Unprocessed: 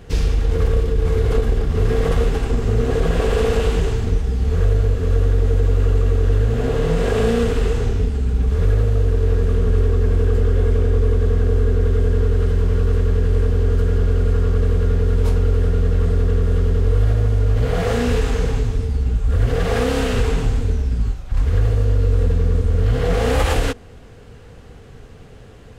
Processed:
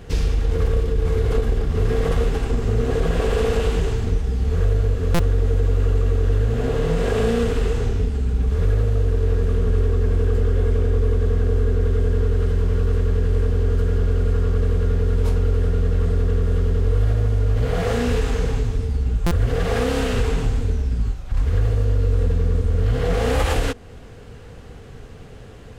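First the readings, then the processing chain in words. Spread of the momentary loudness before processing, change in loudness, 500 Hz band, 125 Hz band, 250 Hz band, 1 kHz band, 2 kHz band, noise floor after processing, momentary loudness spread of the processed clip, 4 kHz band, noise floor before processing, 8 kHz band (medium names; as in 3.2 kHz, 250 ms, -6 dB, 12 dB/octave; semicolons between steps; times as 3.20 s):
3 LU, -2.0 dB, -2.0 dB, -2.0 dB, -2.0 dB, -2.0 dB, -2.0 dB, -39 dBFS, 3 LU, -2.0 dB, -41 dBFS, no reading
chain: in parallel at -2.5 dB: compression, threshold -28 dBFS, peak gain reduction 15.5 dB; on the sum: buffer glitch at 5.14/19.26 s, samples 256, times 8; trim -3.5 dB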